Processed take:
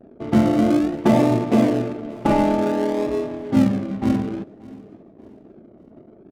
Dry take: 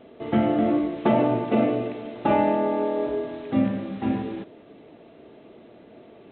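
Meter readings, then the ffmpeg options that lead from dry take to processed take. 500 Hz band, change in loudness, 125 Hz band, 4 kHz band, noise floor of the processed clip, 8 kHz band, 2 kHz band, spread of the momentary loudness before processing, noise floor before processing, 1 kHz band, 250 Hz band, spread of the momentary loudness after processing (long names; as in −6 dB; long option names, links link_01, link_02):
+2.0 dB, +4.0 dB, +7.0 dB, +5.5 dB, −48 dBFS, can't be measured, +2.5 dB, 9 LU, −50 dBFS, +1.0 dB, +5.5 dB, 8 LU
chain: -filter_complex "[0:a]bandreject=frequency=470:width=12,anlmdn=0.0158,lowshelf=frequency=360:gain=6,asplit=2[link_01][link_02];[link_02]acrusher=samples=41:mix=1:aa=0.000001:lfo=1:lforange=24.6:lforate=0.55,volume=-11dB[link_03];[link_01][link_03]amix=inputs=2:normalize=0,adynamicsmooth=sensitivity=6:basefreq=920,asplit=2[link_04][link_05];[link_05]aecho=0:1:582|1164|1746:0.0794|0.0286|0.0103[link_06];[link_04][link_06]amix=inputs=2:normalize=0"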